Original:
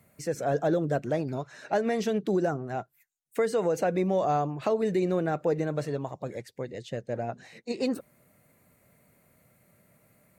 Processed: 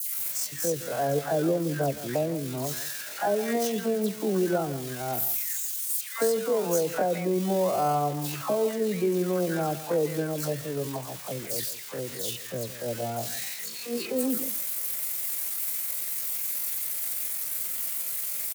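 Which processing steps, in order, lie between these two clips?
switching spikes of -24 dBFS; HPF 50 Hz 6 dB/oct; dispersion lows, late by 0.113 s, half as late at 1700 Hz; tempo 0.56×; on a send: echo 0.164 s -14.5 dB

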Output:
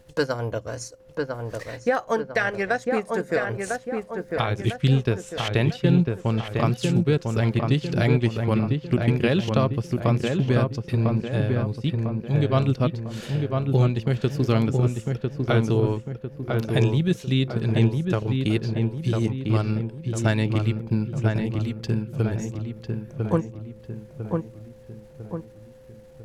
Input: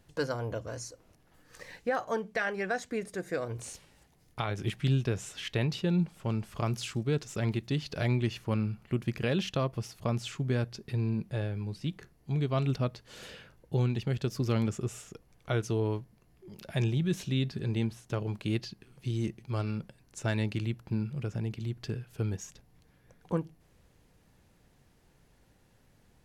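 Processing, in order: transient shaper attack +2 dB, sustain -8 dB; whine 520 Hz -61 dBFS; darkening echo 1 s, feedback 49%, low-pass 2000 Hz, level -3.5 dB; gain +7 dB

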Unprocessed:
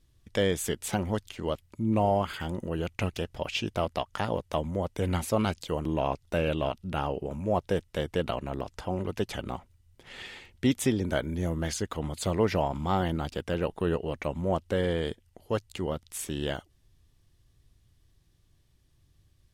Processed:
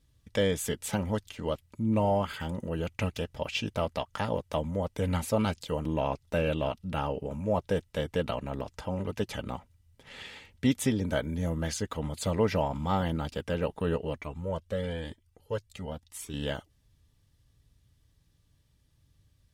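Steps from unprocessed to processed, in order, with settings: notch comb 360 Hz; 14.18–16.34 cascading flanger rising 1 Hz

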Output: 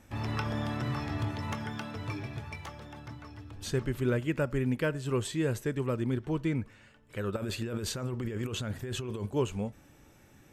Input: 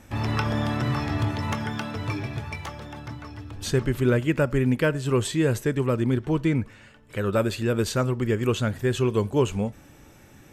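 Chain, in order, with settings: 7.36–9.26 negative-ratio compressor -27 dBFS, ratio -1; gain -7.5 dB

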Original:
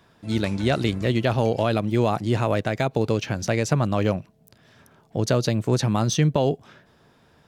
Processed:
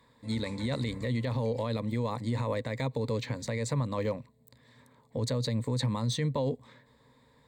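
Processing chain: ripple EQ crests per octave 1, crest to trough 14 dB; limiter -14 dBFS, peak gain reduction 10 dB; gain -7.5 dB

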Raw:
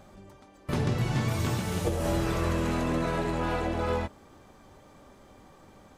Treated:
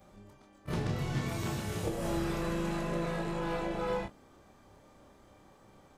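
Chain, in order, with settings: short-time reversal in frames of 60 ms; gain -2 dB

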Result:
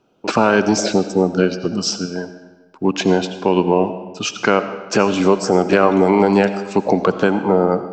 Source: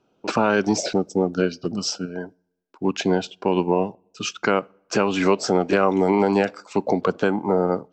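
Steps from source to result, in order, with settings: 5.07–5.57 bell 1200 Hz -> 4700 Hz -12.5 dB 0.97 oct; digital reverb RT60 1.2 s, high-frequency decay 0.85×, pre-delay 45 ms, DRR 10.5 dB; gain +5 dB

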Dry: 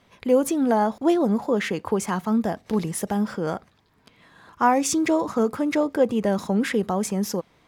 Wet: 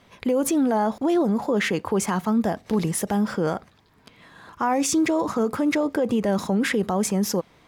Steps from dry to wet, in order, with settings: limiter -18.5 dBFS, peak gain reduction 10 dB; gain +4 dB

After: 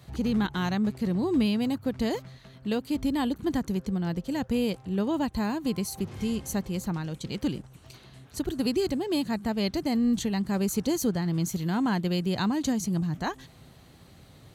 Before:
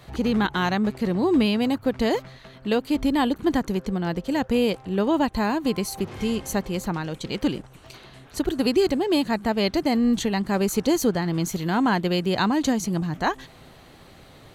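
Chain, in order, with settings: HPF 55 Hz; tone controls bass +9 dB, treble +6 dB; gain -8.5 dB

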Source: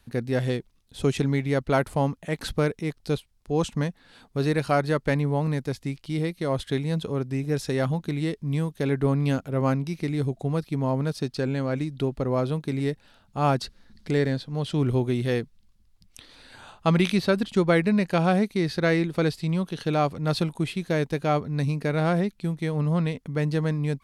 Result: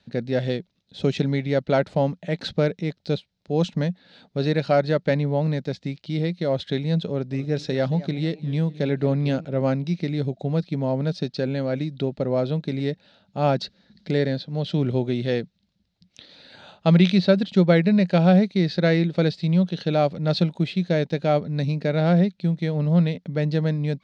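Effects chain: speaker cabinet 110–5700 Hz, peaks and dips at 180 Hz +9 dB, 580 Hz +7 dB, 1100 Hz -9 dB, 3900 Hz +6 dB; 7.09–9.45 warbling echo 0.218 s, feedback 33%, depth 175 cents, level -17.5 dB

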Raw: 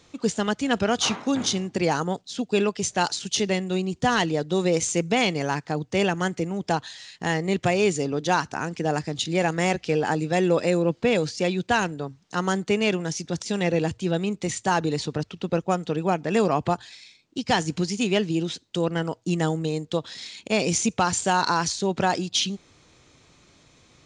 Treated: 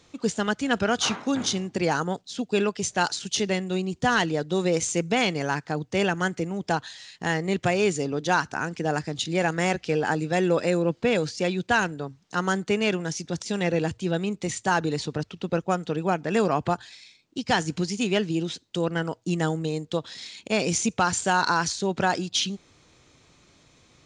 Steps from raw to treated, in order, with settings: dynamic EQ 1500 Hz, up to +5 dB, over -42 dBFS, Q 3.5; gain -1.5 dB

